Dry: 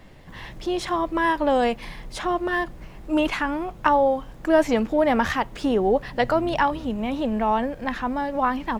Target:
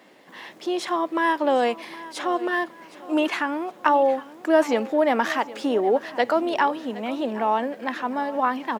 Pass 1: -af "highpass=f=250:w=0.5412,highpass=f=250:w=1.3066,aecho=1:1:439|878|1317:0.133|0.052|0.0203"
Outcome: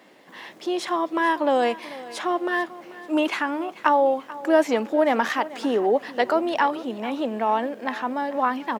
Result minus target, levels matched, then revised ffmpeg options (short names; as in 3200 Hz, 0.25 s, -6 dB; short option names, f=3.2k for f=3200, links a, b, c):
echo 0.326 s early
-af "highpass=f=250:w=0.5412,highpass=f=250:w=1.3066,aecho=1:1:765|1530|2295:0.133|0.052|0.0203"